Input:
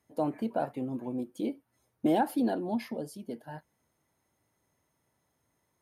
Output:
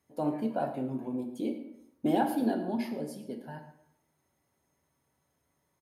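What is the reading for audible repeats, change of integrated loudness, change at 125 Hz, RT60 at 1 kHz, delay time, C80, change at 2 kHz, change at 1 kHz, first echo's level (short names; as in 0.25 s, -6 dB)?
1, -0.5 dB, +1.0 dB, 0.80 s, 0.111 s, 10.5 dB, 0.0 dB, -0.5 dB, -15.5 dB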